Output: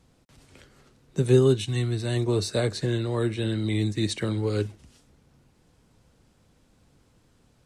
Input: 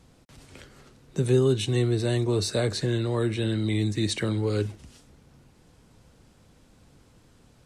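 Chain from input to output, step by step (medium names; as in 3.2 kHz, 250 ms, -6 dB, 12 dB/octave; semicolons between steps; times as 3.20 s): 1.62–2.15 s: peaking EQ 450 Hz -13.5 dB -> -4.5 dB 1.1 oct; upward expansion 1.5:1, over -34 dBFS; trim +3.5 dB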